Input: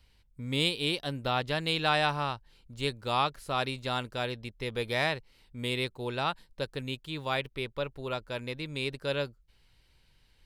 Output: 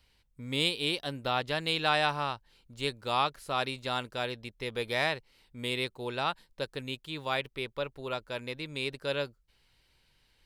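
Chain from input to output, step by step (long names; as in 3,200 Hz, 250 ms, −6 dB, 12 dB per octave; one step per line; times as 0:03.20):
low-shelf EQ 180 Hz −7 dB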